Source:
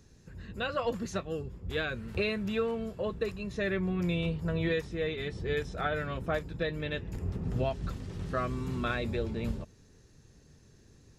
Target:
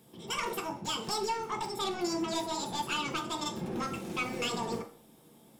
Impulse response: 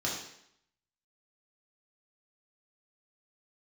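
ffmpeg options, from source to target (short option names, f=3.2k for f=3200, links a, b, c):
-filter_complex "[0:a]highpass=f=160:p=1,aeval=exprs='(tanh(28.2*val(0)+0.2)-tanh(0.2))/28.2':c=same,asplit=2[a][b];[1:a]atrim=start_sample=2205,asetrate=37485,aresample=44100[c];[b][c]afir=irnorm=-1:irlink=0,volume=-9dB[d];[a][d]amix=inputs=2:normalize=0,asetrate=88200,aresample=44100"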